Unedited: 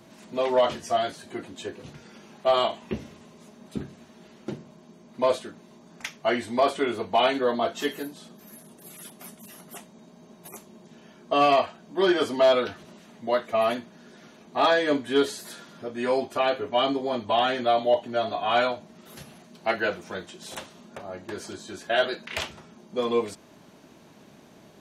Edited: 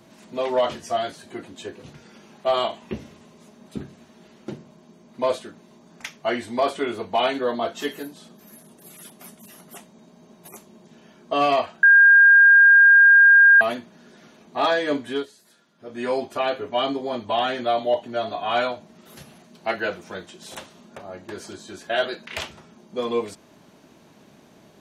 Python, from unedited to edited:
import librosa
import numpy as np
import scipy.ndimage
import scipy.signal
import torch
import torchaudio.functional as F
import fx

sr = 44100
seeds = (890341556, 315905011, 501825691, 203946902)

y = fx.edit(x, sr, fx.bleep(start_s=11.83, length_s=1.78, hz=1610.0, db=-8.5),
    fx.fade_down_up(start_s=15.09, length_s=0.86, db=-16.0, fade_s=0.17), tone=tone)